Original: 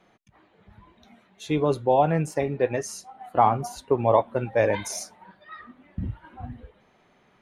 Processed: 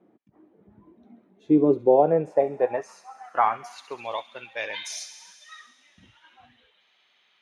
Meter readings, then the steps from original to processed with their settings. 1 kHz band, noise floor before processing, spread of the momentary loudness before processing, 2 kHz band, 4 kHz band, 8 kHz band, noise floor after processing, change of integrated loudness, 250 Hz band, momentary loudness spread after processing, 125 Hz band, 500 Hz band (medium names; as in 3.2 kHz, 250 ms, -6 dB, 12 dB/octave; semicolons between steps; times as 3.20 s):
-2.5 dB, -62 dBFS, 20 LU, -1.0 dB, +2.0 dB, -4.5 dB, -66 dBFS, +0.5 dB, +3.5 dB, 18 LU, -9.0 dB, +0.5 dB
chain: band-pass sweep 300 Hz -> 3.4 kHz, 1.64–4.18 s; feedback echo behind a high-pass 67 ms, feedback 79%, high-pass 2.9 kHz, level -11 dB; trim +8.5 dB